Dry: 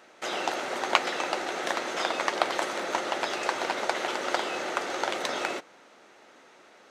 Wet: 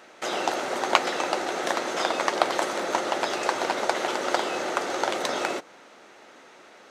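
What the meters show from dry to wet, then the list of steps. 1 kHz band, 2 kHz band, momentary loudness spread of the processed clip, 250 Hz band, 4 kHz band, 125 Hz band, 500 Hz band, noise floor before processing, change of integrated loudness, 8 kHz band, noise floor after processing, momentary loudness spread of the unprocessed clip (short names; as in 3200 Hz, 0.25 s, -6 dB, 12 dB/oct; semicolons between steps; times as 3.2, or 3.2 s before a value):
+3.5 dB, +1.0 dB, 4 LU, +4.5 dB, +1.5 dB, +4.5 dB, +4.0 dB, -55 dBFS, +3.0 dB, +3.5 dB, -51 dBFS, 5 LU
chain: dynamic EQ 2400 Hz, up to -4 dB, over -42 dBFS, Q 0.74; gain +4.5 dB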